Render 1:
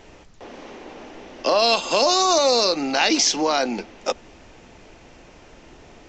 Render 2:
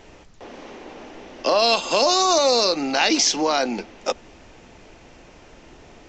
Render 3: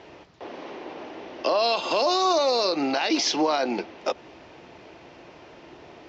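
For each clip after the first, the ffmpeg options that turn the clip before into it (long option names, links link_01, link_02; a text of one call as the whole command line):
ffmpeg -i in.wav -af anull out.wav
ffmpeg -i in.wav -af "highpass=110,equalizer=frequency=220:width_type=q:width=4:gain=-5,equalizer=frequency=350:width_type=q:width=4:gain=4,equalizer=frequency=650:width_type=q:width=4:gain=3,equalizer=frequency=990:width_type=q:width=4:gain=3,lowpass=frequency=5100:width=0.5412,lowpass=frequency=5100:width=1.3066,alimiter=limit=-14dB:level=0:latency=1:release=99" out.wav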